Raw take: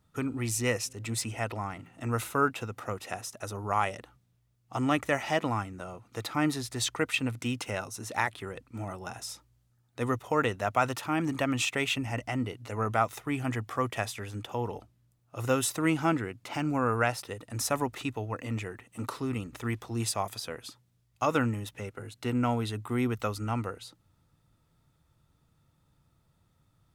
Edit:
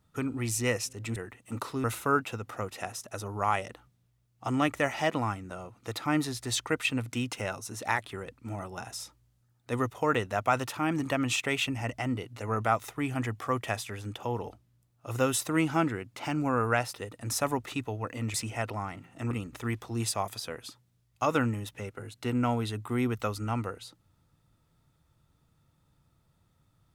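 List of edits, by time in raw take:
1.16–2.13 swap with 18.63–19.31

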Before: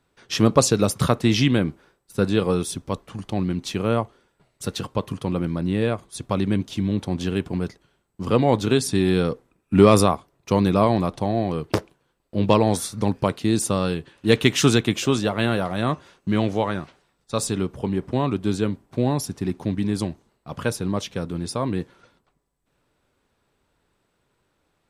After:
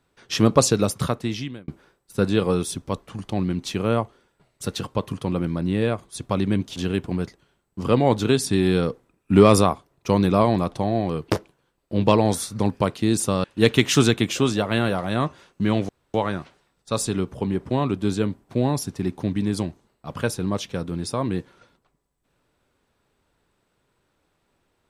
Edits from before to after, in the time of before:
0.7–1.68 fade out
6.76–7.18 cut
13.86–14.11 cut
16.56 insert room tone 0.25 s

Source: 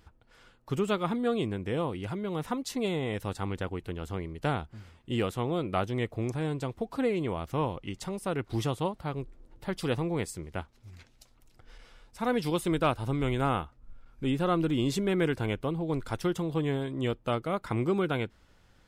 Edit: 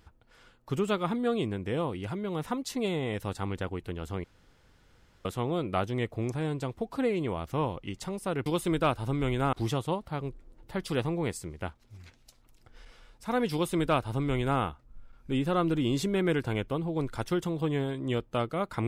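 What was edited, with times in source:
4.24–5.25 room tone
12.46–13.53 copy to 8.46

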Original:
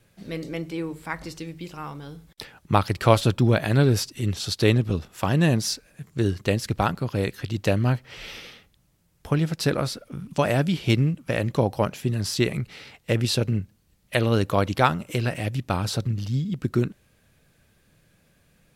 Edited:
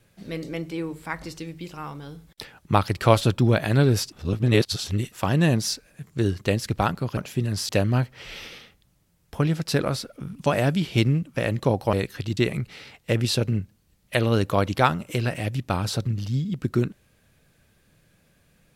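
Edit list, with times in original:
4.12–5.12 reverse
7.17–7.61 swap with 11.85–12.37

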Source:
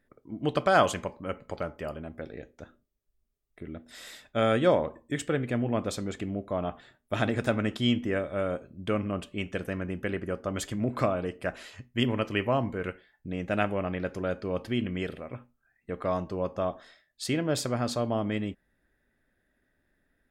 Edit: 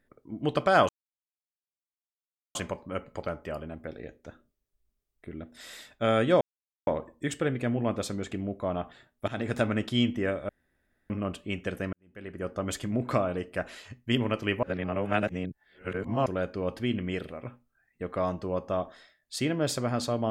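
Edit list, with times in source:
0.89 insert silence 1.66 s
4.75 insert silence 0.46 s
7.16–7.5 fade in equal-power, from -17.5 dB
8.37–8.98 room tone
9.81–10.37 fade in quadratic
12.51–14.14 reverse

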